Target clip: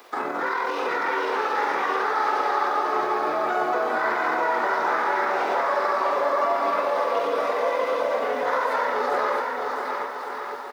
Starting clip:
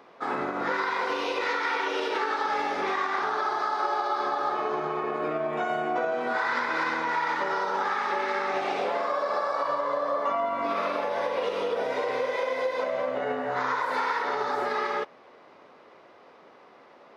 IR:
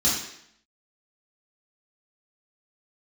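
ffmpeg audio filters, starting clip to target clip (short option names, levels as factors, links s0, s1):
-filter_complex "[0:a]highpass=250,acrossover=split=620|1800[s0][s1][s2];[s2]acompressor=threshold=0.00224:ratio=5[s3];[s0][s1][s3]amix=inputs=3:normalize=0,crystalizer=i=4.5:c=0,acrusher=bits=9:mix=0:aa=0.000001,atempo=1.6,aecho=1:1:660|1155|1526|1805|2014:0.631|0.398|0.251|0.158|0.1,volume=1.26"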